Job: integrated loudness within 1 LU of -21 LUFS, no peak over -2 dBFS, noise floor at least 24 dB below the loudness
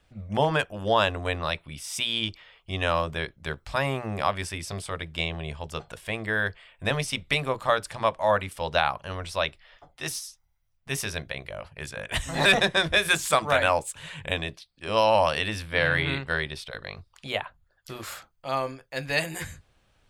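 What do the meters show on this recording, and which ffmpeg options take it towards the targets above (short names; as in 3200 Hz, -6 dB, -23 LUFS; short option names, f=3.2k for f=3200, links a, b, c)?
loudness -27.0 LUFS; peak -6.0 dBFS; loudness target -21.0 LUFS
-> -af "volume=6dB,alimiter=limit=-2dB:level=0:latency=1"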